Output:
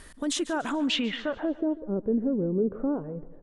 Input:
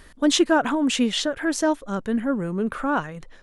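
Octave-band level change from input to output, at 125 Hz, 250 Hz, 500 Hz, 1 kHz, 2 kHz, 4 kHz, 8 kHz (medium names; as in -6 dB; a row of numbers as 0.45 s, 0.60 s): -2.0 dB, -5.0 dB, -4.5 dB, -11.0 dB, -9.0 dB, -6.0 dB, no reading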